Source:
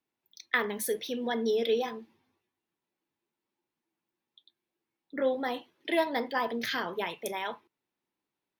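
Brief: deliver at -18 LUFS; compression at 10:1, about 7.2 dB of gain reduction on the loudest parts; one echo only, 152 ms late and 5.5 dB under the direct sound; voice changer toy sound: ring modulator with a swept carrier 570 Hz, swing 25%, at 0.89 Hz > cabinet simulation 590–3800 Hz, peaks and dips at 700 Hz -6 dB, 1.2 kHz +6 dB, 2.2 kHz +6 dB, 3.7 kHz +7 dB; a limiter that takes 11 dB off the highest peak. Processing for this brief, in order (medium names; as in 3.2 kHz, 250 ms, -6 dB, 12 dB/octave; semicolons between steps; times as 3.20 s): compression 10:1, threshold -29 dBFS; peak limiter -25.5 dBFS; delay 152 ms -5.5 dB; ring modulator with a swept carrier 570 Hz, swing 25%, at 0.89 Hz; cabinet simulation 590–3800 Hz, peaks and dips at 700 Hz -6 dB, 1.2 kHz +6 dB, 2.2 kHz +6 dB, 3.7 kHz +7 dB; trim +20 dB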